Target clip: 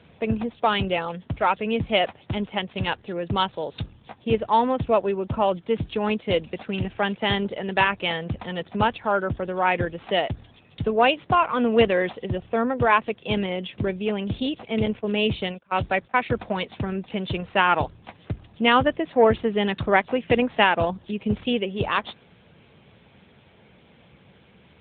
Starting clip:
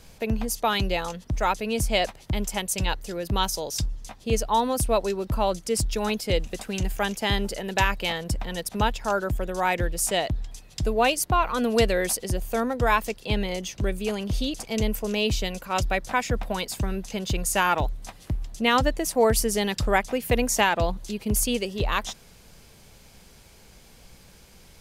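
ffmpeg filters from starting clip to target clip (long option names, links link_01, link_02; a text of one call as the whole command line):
ffmpeg -i in.wav -filter_complex "[0:a]asettb=1/sr,asplit=3[link_01][link_02][link_03];[link_01]atrim=end=14.864[link_04];[link_02]atrim=start=14.86:end=16.37,asetpts=PTS-STARTPTS,afade=type=in:duration=0.004:curve=qsin,afade=type=out:start_time=1.506:duration=0.004:curve=qsin,agate=range=-23dB:threshold=-30dB:ratio=16:detection=peak[link_05];[link_03]atrim=start=16.366[link_06];[link_04][link_05]acrossfade=duration=0.004:curve1=hsin:curve2=qsin[link_07];[link_07][link_06]acrossfade=duration=0.004:curve1=qsin:curve2=hsin,aeval=exprs='0.596*(cos(1*acos(clip(val(0)/0.596,-1,1)))-cos(1*PI/2))+0.0106*(cos(3*acos(clip(val(0)/0.596,-1,1)))-cos(3*PI/2))+0.00335*(cos(4*acos(clip(val(0)/0.596,-1,1)))-cos(4*PI/2))+0.0106*(cos(7*acos(clip(val(0)/0.596,-1,1)))-cos(7*PI/2))+0.0106*(cos(8*acos(clip(val(0)/0.596,-1,1)))-cos(8*PI/2))':channel_layout=same,volume=4.5dB" -ar 8000 -c:a libopencore_amrnb -b:a 10200 out.amr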